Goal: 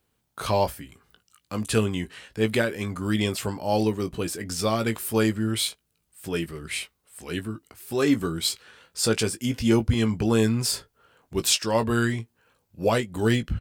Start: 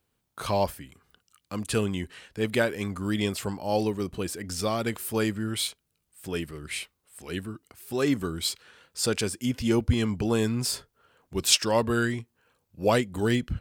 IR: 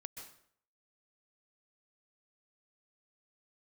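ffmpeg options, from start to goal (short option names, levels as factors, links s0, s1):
-filter_complex "[0:a]alimiter=limit=0.224:level=0:latency=1:release=416,asplit=2[s0][s1];[s1]adelay=18,volume=0.355[s2];[s0][s2]amix=inputs=2:normalize=0,volume=1.33"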